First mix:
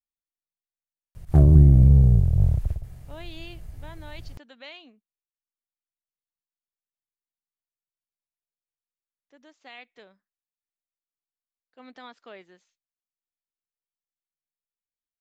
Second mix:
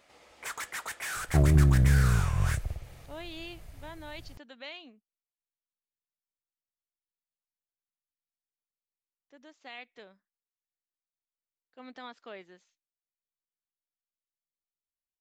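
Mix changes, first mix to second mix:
first sound: unmuted; second sound: add bass shelf 360 Hz -8.5 dB

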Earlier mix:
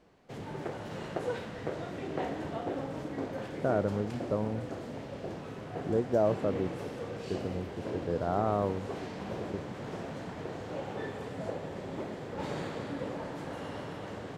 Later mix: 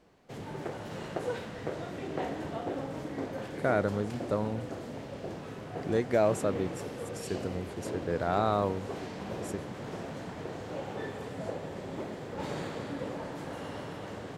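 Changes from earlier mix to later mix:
speech: remove boxcar filter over 20 samples; master: add treble shelf 7.4 kHz +5.5 dB

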